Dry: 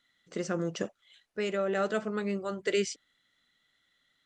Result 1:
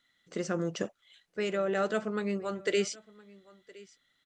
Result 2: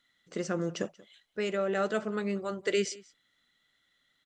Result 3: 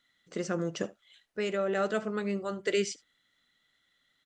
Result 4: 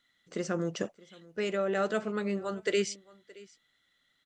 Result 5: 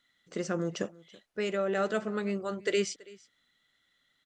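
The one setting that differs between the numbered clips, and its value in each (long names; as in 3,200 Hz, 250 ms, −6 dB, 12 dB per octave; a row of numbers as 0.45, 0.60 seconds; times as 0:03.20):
single-tap delay, delay time: 1,016, 184, 75, 622, 330 milliseconds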